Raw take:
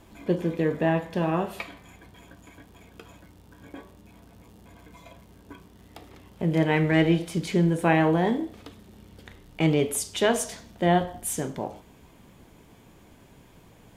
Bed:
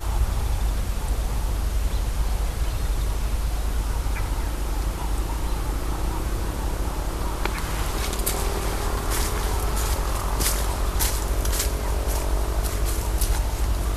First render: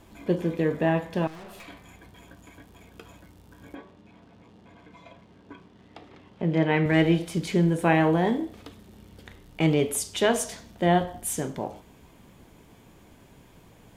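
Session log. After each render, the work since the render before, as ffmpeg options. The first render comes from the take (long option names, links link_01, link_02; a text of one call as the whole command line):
ffmpeg -i in.wav -filter_complex "[0:a]asettb=1/sr,asplit=3[link_01][link_02][link_03];[link_01]atrim=end=1.274[link_04];[link_02]atrim=start=1.27:end=1.68,asetpts=PTS-STARTPTS,afade=type=in:duration=0.004:curve=qsin,afade=type=out:start_time=0.406:duration=0.004:curve=qsin,aeval=exprs='(tanh(126*val(0)+0.3)-tanh(0.3))/126':channel_layout=same[link_05];[link_03]atrim=start=1.676[link_06];[link_04][link_05]acrossfade=duration=0.004:curve1=hsin:curve2=qsin[link_07];[link_07][link_06]acrossfade=duration=0.004:curve1=qsin:curve2=hsin,asettb=1/sr,asplit=3[link_08][link_09][link_10];[link_08]atrim=end=3.754[link_11];[link_09]atrim=start=3.75:end=6.86,asetpts=PTS-STARTPTS,afade=type=in:duration=0.004:curve=qsin,afade=type=out:start_time=3.106:duration=0.004:curve=qsin,highpass=110,lowpass=4200[link_12];[link_10]atrim=start=6.856[link_13];[link_11][link_12]acrossfade=duration=0.004:curve1=hsin:curve2=qsin[link_14];[link_14][link_13]acrossfade=duration=0.004:curve1=qsin:curve2=hsin" out.wav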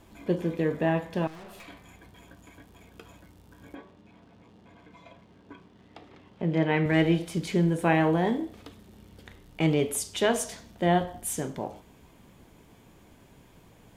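ffmpeg -i in.wav -af "volume=-2dB" out.wav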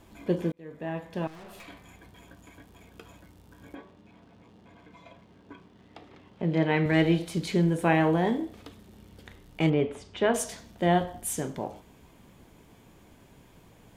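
ffmpeg -i in.wav -filter_complex "[0:a]asettb=1/sr,asplit=3[link_01][link_02][link_03];[link_01]atrim=end=6.434[link_04];[link_02]atrim=start=6.43:end=7.62,asetpts=PTS-STARTPTS,afade=type=in:duration=0.004:curve=qsin,afade=type=out:start_time=1.186:duration=0.004:curve=qsin,equalizer=frequency=4100:width=7.6:gain=7[link_05];[link_03]atrim=start=7.616[link_06];[link_04][link_05]acrossfade=duration=0.004:curve1=hsin:curve2=qsin[link_07];[link_07][link_06]acrossfade=duration=0.004:curve1=qsin:curve2=hsin,asplit=3[link_08][link_09][link_10];[link_08]afade=type=out:start_time=9.69:duration=0.02[link_11];[link_09]lowpass=2300,afade=type=in:start_time=9.69:duration=0.02,afade=type=out:start_time=10.33:duration=0.02[link_12];[link_10]afade=type=in:start_time=10.33:duration=0.02[link_13];[link_11][link_12][link_13]amix=inputs=3:normalize=0,asplit=2[link_14][link_15];[link_14]atrim=end=0.52,asetpts=PTS-STARTPTS,afade=type=out:start_time=0.516:duration=0.004:curve=hsin[link_16];[link_15]atrim=start=0.52,asetpts=PTS-STARTPTS,afade=type=in:duration=1.02[link_17];[link_16][link_17]concat=n=2:v=0:a=1" out.wav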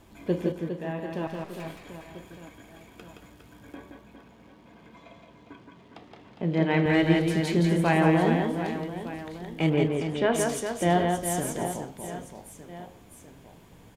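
ffmpeg -i in.wav -af "aecho=1:1:170|408|741.2|1208|1861:0.631|0.398|0.251|0.158|0.1" out.wav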